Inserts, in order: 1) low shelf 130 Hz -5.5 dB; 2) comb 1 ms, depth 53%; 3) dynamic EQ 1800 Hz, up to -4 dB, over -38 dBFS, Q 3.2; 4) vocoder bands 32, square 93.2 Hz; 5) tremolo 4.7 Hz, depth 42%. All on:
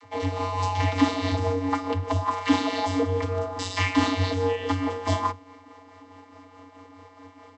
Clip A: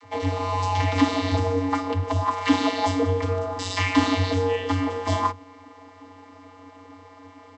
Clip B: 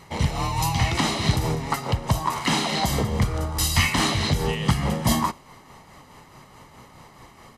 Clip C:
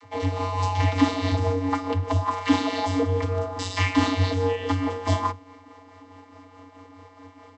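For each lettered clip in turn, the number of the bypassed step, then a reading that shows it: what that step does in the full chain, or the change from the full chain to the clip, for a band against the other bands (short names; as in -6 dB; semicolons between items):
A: 5, loudness change +2.0 LU; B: 4, 8 kHz band +10.0 dB; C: 1, 125 Hz band +3.0 dB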